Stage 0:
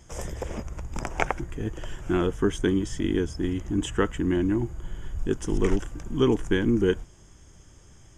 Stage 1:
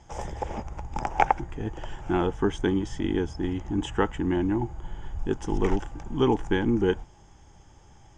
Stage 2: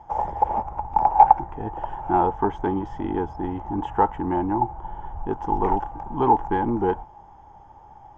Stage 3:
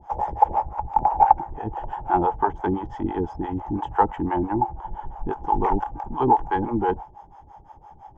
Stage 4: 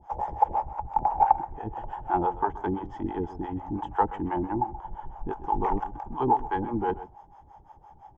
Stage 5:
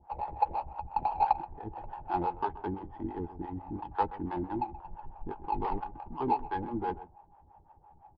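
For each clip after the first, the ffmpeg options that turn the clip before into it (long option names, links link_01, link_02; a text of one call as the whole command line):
ffmpeg -i in.wav -af "lowpass=5700,equalizer=frequency=830:width=4.5:gain=15,volume=-1.5dB" out.wav
ffmpeg -i in.wav -af "crystalizer=i=10:c=0,asoftclip=type=tanh:threshold=-13.5dB,lowpass=frequency=870:width_type=q:width=4.8,volume=-1.5dB" out.wav
ffmpeg -i in.wav -filter_complex "[0:a]acrossover=split=470[link_01][link_02];[link_01]aeval=exprs='val(0)*(1-1/2+1/2*cos(2*PI*5.9*n/s))':channel_layout=same[link_03];[link_02]aeval=exprs='val(0)*(1-1/2-1/2*cos(2*PI*5.9*n/s))':channel_layout=same[link_04];[link_03][link_04]amix=inputs=2:normalize=0,volume=5dB" out.wav
ffmpeg -i in.wav -filter_complex "[0:a]asplit=2[link_01][link_02];[link_02]adelay=128.3,volume=-16dB,highshelf=frequency=4000:gain=-2.89[link_03];[link_01][link_03]amix=inputs=2:normalize=0,volume=-5dB" out.wav
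ffmpeg -i in.wav -filter_complex "[0:a]adynamicsmooth=sensitivity=3:basefreq=1700,asplit=2[link_01][link_02];[link_02]adelay=12,volume=-10.5dB[link_03];[link_01][link_03]amix=inputs=2:normalize=0,aresample=11025,aresample=44100,volume=-6dB" out.wav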